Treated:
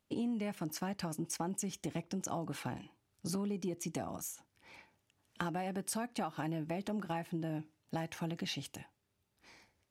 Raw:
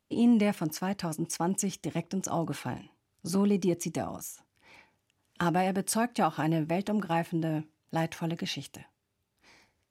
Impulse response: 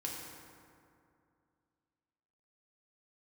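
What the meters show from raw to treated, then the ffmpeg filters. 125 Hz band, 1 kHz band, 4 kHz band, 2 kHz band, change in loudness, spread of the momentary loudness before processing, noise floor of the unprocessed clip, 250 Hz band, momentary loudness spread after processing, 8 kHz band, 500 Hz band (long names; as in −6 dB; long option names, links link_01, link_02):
−8.5 dB, −9.5 dB, −5.5 dB, −8.0 dB, −9.0 dB, 12 LU, −80 dBFS, −9.5 dB, 11 LU, −6.0 dB, −9.5 dB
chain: -af "acompressor=threshold=-33dB:ratio=6,volume=-1.5dB"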